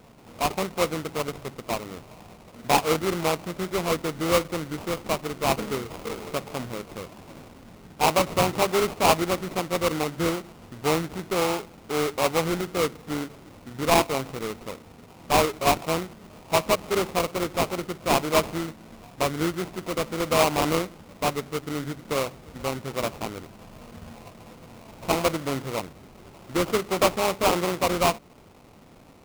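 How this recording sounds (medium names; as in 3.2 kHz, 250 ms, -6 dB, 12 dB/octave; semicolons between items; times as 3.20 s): aliases and images of a low sample rate 1.7 kHz, jitter 20%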